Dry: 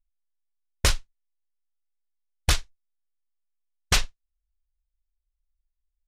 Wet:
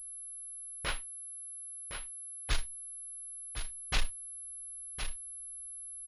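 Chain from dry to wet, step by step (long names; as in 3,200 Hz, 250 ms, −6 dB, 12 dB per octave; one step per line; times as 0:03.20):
0:00.85–0:02.50: three-way crossover with the lows and the highs turned down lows −14 dB, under 230 Hz, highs −15 dB, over 3,800 Hz
volume swells 167 ms
soft clipping −26.5 dBFS, distortion −16 dB
single-tap delay 1,062 ms −8.5 dB
switching amplifier with a slow clock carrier 11,000 Hz
level +6.5 dB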